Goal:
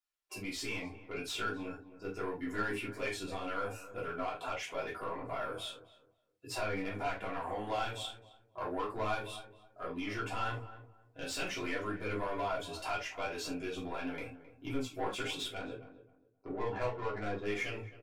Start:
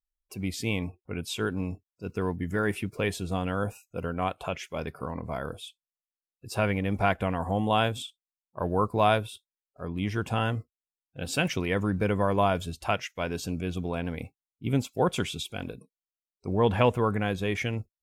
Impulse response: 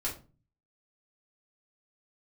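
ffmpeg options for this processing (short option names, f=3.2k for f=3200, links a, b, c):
-filter_complex "[0:a]highpass=f=130:p=1,acompressor=threshold=-37dB:ratio=2.5,flanger=delay=6.9:depth=3.5:regen=45:speed=1.7:shape=sinusoidal,asettb=1/sr,asplit=3[a][b][c];[a]atrim=end=15.474[d];[b]atrim=start=15.47:end=17.48,asetpts=PTS-STARTPTS,afade=t=in:d=0.004:c=qsin,afade=t=out:st=2.006:d=0.004:c=qsin,adynamicsmooth=sensitivity=7:basefreq=1.3k[e];[c]atrim=start=17.476[f];[d][e]acrossfade=d=0.004:c1=hsin:c2=qsin[g];[g][f]acrossfade=d=0.004:c1=qsin:c2=hsin,asplit=2[h][i];[i]highpass=f=720:p=1,volume=19dB,asoftclip=type=tanh:threshold=-23.5dB[j];[h][j]amix=inputs=2:normalize=0,lowpass=f=5k:p=1,volume=-6dB,asplit=2[k][l];[l]adelay=264,lowpass=f=1.2k:p=1,volume=-13dB,asplit=2[m][n];[n]adelay=264,lowpass=f=1.2k:p=1,volume=0.26,asplit=2[o][p];[p]adelay=264,lowpass=f=1.2k:p=1,volume=0.26[q];[k][m][o][q]amix=inputs=4:normalize=0[r];[1:a]atrim=start_sample=2205,atrim=end_sample=3969[s];[r][s]afir=irnorm=-1:irlink=0,volume=-6dB"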